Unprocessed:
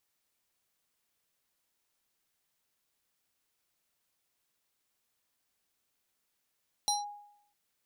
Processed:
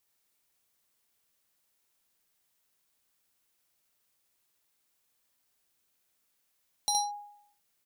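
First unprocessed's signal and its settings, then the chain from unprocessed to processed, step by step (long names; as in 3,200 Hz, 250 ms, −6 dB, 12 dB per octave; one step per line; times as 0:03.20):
two-operator FM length 0.65 s, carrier 824 Hz, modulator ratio 5.91, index 1.6, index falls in 0.17 s linear, decay 0.74 s, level −24 dB
high-shelf EQ 7,700 Hz +4.5 dB
ambience of single reflections 52 ms −17 dB, 68 ms −4 dB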